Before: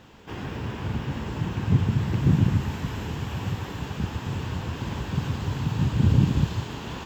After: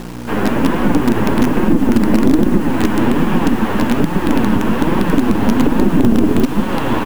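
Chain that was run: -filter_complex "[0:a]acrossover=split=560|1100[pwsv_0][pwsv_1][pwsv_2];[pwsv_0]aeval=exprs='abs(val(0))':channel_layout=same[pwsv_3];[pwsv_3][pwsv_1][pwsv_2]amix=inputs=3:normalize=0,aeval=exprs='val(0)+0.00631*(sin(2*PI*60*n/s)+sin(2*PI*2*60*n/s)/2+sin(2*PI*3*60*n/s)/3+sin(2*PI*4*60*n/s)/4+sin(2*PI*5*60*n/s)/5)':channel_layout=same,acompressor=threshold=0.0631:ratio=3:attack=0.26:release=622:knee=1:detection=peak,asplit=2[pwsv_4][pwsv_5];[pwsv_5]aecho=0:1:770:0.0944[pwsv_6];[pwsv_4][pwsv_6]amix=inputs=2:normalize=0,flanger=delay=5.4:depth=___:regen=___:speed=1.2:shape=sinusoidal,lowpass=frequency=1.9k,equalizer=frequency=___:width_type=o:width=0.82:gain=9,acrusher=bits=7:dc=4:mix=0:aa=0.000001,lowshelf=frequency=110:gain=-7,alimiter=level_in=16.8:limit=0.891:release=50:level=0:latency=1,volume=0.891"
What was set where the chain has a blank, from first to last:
4.4, 32, 250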